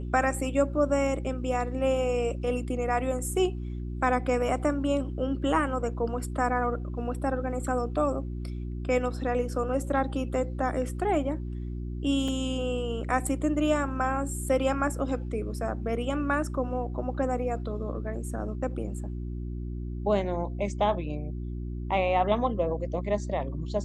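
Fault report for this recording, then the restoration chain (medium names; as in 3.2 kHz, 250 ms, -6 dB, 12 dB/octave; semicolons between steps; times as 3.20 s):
hum 60 Hz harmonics 6 -34 dBFS
12.28 s: dropout 3.2 ms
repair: de-hum 60 Hz, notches 6; interpolate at 12.28 s, 3.2 ms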